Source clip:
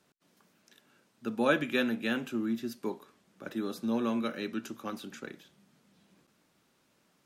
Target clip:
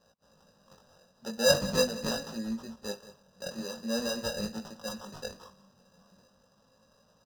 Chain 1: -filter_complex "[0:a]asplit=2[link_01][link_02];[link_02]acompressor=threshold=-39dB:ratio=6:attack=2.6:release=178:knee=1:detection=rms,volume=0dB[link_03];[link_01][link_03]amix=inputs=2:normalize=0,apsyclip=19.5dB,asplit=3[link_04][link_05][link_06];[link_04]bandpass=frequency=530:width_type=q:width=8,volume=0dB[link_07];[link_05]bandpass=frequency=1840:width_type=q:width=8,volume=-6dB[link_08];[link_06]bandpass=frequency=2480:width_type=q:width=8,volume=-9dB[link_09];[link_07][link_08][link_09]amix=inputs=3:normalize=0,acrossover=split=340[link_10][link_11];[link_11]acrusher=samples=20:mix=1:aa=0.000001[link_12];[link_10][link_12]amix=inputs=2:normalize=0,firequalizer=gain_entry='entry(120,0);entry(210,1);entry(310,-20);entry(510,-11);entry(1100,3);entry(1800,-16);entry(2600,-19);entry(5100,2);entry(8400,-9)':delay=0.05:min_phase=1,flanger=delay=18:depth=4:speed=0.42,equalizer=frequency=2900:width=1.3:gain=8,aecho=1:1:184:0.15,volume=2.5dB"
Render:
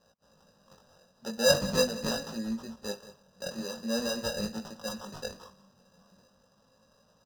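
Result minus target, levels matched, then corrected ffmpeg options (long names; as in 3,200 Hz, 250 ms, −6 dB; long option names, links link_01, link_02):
downward compressor: peak gain reduction −5 dB
-filter_complex "[0:a]asplit=2[link_01][link_02];[link_02]acompressor=threshold=-45dB:ratio=6:attack=2.6:release=178:knee=1:detection=rms,volume=0dB[link_03];[link_01][link_03]amix=inputs=2:normalize=0,apsyclip=19.5dB,asplit=3[link_04][link_05][link_06];[link_04]bandpass=frequency=530:width_type=q:width=8,volume=0dB[link_07];[link_05]bandpass=frequency=1840:width_type=q:width=8,volume=-6dB[link_08];[link_06]bandpass=frequency=2480:width_type=q:width=8,volume=-9dB[link_09];[link_07][link_08][link_09]amix=inputs=3:normalize=0,acrossover=split=340[link_10][link_11];[link_11]acrusher=samples=20:mix=1:aa=0.000001[link_12];[link_10][link_12]amix=inputs=2:normalize=0,firequalizer=gain_entry='entry(120,0);entry(210,1);entry(310,-20);entry(510,-11);entry(1100,3);entry(1800,-16);entry(2600,-19);entry(5100,2);entry(8400,-9)':delay=0.05:min_phase=1,flanger=delay=18:depth=4:speed=0.42,equalizer=frequency=2900:width=1.3:gain=8,aecho=1:1:184:0.15,volume=2.5dB"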